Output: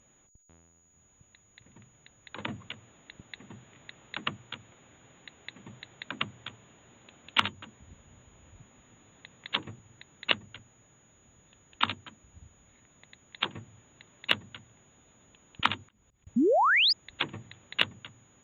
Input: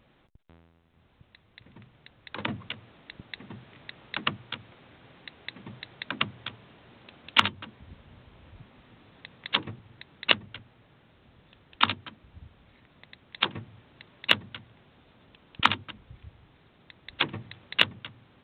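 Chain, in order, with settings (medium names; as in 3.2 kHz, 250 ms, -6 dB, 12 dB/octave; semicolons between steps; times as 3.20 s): 16.36–16.93 s: painted sound rise 210–5300 Hz -18 dBFS; whistle 6.8 kHz -59 dBFS; 15.82–16.27 s: slow attack 319 ms; trim -4.5 dB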